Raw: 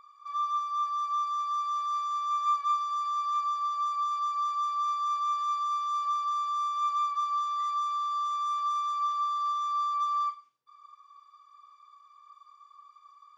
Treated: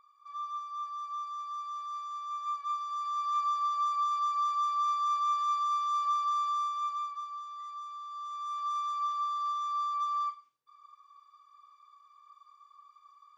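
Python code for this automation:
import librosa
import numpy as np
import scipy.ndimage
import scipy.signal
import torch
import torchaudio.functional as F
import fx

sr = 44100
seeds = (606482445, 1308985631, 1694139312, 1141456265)

y = fx.gain(x, sr, db=fx.line((2.52, -8.0), (3.49, 0.0), (6.5, 0.0), (7.38, -12.0), (8.06, -12.0), (8.76, -3.0)))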